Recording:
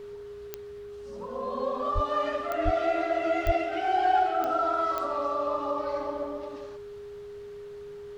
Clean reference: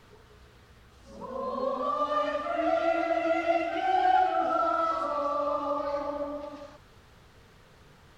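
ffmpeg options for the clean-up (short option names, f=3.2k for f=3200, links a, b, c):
-filter_complex "[0:a]adeclick=t=4,bandreject=f=410:w=30,asplit=3[a][b][c];[a]afade=t=out:st=1.94:d=0.02[d];[b]highpass=f=140:w=0.5412,highpass=f=140:w=1.3066,afade=t=in:st=1.94:d=0.02,afade=t=out:st=2.06:d=0.02[e];[c]afade=t=in:st=2.06:d=0.02[f];[d][e][f]amix=inputs=3:normalize=0,asplit=3[g][h][i];[g]afade=t=out:st=2.64:d=0.02[j];[h]highpass=f=140:w=0.5412,highpass=f=140:w=1.3066,afade=t=in:st=2.64:d=0.02,afade=t=out:st=2.76:d=0.02[k];[i]afade=t=in:st=2.76:d=0.02[l];[j][k][l]amix=inputs=3:normalize=0,asplit=3[m][n][o];[m]afade=t=out:st=3.45:d=0.02[p];[n]highpass=f=140:w=0.5412,highpass=f=140:w=1.3066,afade=t=in:st=3.45:d=0.02,afade=t=out:st=3.57:d=0.02[q];[o]afade=t=in:st=3.57:d=0.02[r];[p][q][r]amix=inputs=3:normalize=0"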